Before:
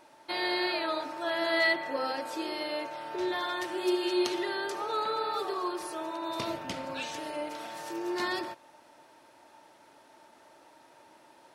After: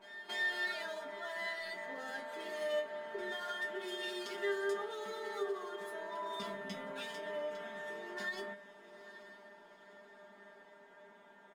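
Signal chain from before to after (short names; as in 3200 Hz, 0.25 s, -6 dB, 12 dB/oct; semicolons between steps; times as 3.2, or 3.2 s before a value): Wiener smoothing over 9 samples; comb 4.4 ms, depth 71%; pre-echo 0.277 s -23 dB; in parallel at -1 dB: compressor, threshold -44 dBFS, peak gain reduction 21.5 dB; on the sum: limiter -23.5 dBFS, peak gain reduction 10.5 dB; resonator 200 Hz, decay 0.17 s, harmonics all, mix 100%; diffused feedback echo 0.883 s, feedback 48%, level -15 dB; ending taper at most 180 dB/s; gain +3.5 dB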